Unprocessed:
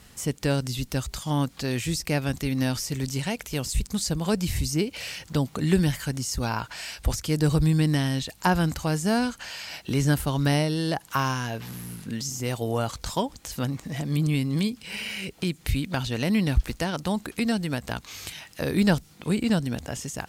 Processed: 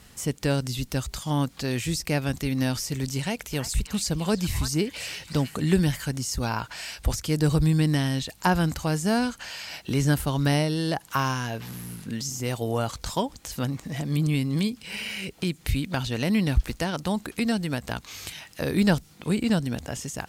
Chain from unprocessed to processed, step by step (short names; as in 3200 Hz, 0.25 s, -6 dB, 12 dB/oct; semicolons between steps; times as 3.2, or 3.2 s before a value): 3.19–5.62 delay with a stepping band-pass 0.331 s, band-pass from 1300 Hz, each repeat 1.4 oct, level -4.5 dB